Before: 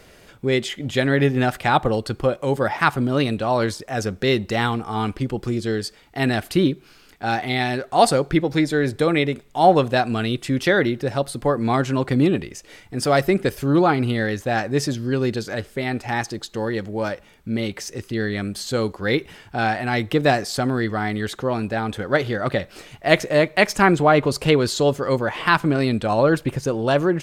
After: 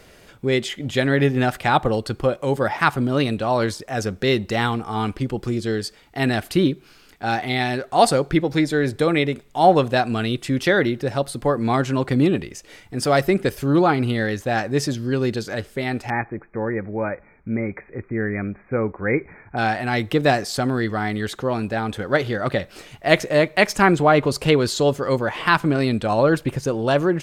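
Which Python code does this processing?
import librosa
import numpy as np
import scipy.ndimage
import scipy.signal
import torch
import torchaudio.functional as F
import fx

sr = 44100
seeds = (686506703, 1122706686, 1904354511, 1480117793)

y = fx.brickwall_lowpass(x, sr, high_hz=2500.0, at=(16.1, 19.57))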